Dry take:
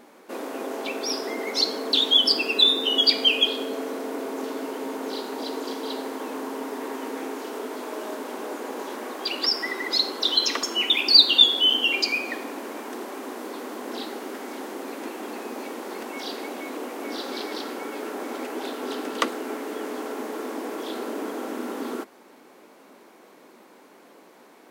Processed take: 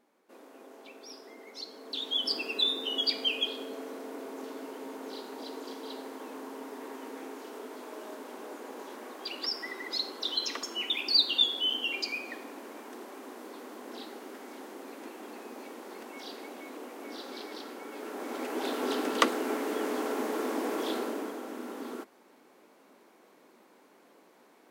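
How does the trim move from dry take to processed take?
1.67 s -19.5 dB
2.34 s -10 dB
17.84 s -10 dB
18.75 s 0 dB
20.91 s 0 dB
21.42 s -8.5 dB

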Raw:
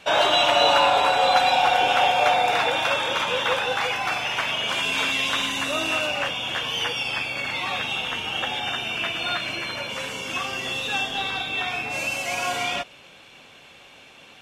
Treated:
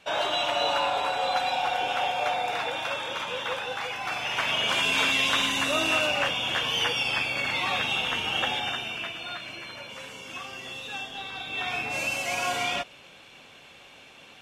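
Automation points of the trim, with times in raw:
3.92 s -8 dB
4.57 s 0 dB
8.48 s 0 dB
9.25 s -10 dB
11.30 s -10 dB
11.74 s -2 dB

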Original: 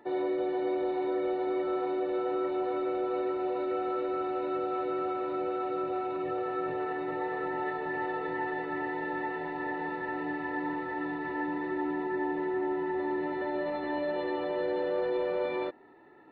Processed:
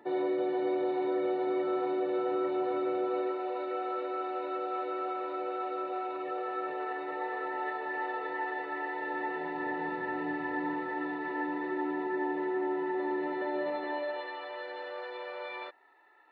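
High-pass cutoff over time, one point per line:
2.92 s 110 Hz
3.42 s 450 Hz
8.96 s 450 Hz
9.83 s 110 Hz
10.53 s 110 Hz
11.11 s 250 Hz
13.68 s 250 Hz
14.32 s 970 Hz

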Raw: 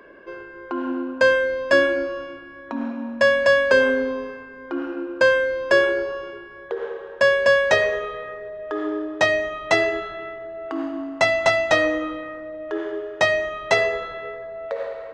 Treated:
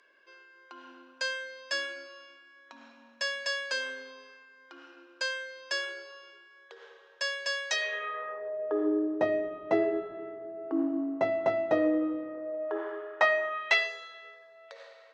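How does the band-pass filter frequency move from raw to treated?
band-pass filter, Q 1.4
7.73 s 5.6 kHz
8.18 s 1.3 kHz
8.94 s 330 Hz
12.25 s 330 Hz
12.96 s 1.2 kHz
13.49 s 1.2 kHz
13.94 s 5.4 kHz

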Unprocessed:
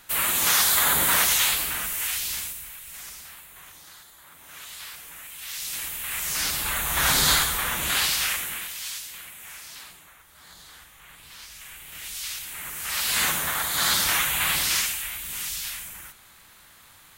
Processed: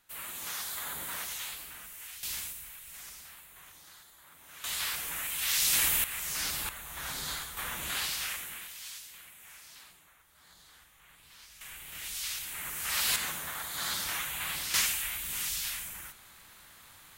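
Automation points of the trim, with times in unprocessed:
-17.5 dB
from 2.23 s -6.5 dB
from 4.64 s +6 dB
from 6.04 s -7 dB
from 6.69 s -17 dB
from 7.57 s -10 dB
from 11.61 s -3 dB
from 13.16 s -11.5 dB
from 14.74 s -2.5 dB

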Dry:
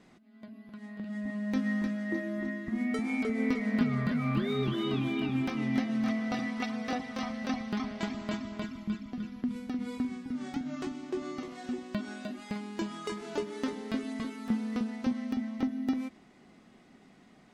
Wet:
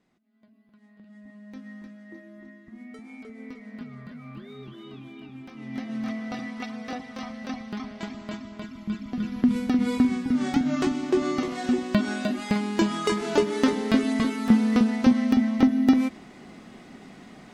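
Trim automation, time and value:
5.46 s -12 dB
5.93 s -1 dB
8.64 s -1 dB
9.44 s +12 dB

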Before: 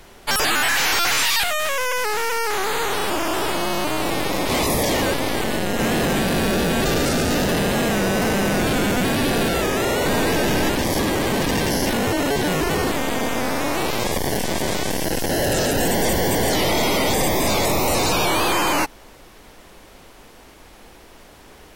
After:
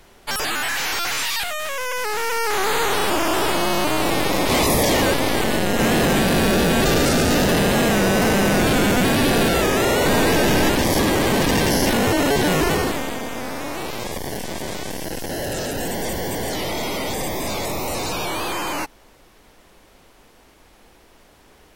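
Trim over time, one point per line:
1.68 s -4.5 dB
2.69 s +2.5 dB
12.67 s +2.5 dB
13.23 s -6 dB

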